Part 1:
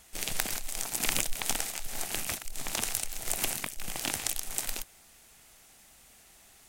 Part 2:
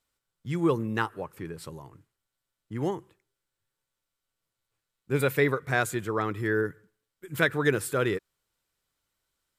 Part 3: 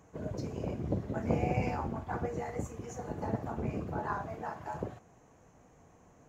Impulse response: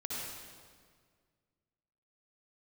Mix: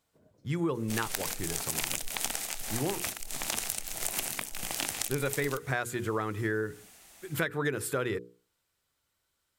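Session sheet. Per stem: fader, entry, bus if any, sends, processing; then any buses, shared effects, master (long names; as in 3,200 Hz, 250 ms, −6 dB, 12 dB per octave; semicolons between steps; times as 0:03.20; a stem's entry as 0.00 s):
+2.0 dB, 0.75 s, no send, no processing
+2.0 dB, 0.00 s, no send, parametric band 82 Hz +6.5 dB 0.77 octaves
−19.0 dB, 0.00 s, no send, automatic ducking −15 dB, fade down 0.75 s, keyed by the second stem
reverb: not used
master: low-shelf EQ 81 Hz −7 dB; mains-hum notches 60/120/180/240/300/360/420/480 Hz; downward compressor 6 to 1, threshold −27 dBFS, peak gain reduction 11 dB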